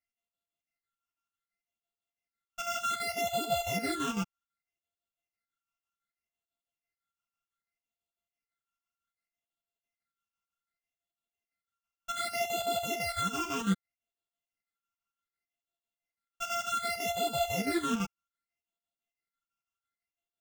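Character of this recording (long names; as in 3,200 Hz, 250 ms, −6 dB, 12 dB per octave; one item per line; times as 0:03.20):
a buzz of ramps at a fixed pitch in blocks of 64 samples
phaser sweep stages 8, 0.65 Hz, lowest notch 550–1,800 Hz
chopped level 6 Hz, depth 60%, duty 65%
a shimmering, thickened sound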